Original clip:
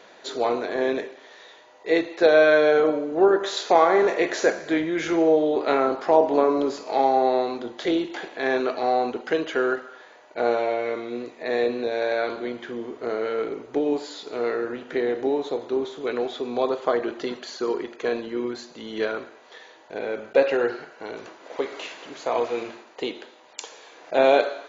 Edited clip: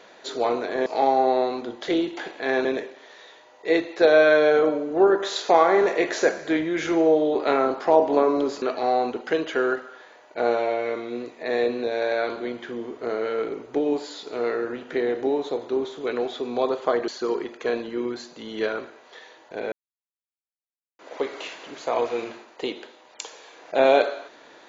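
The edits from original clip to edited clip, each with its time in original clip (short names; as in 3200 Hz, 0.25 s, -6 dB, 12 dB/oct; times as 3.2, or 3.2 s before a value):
6.83–8.62 move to 0.86
17.08–17.47 cut
20.11–21.38 mute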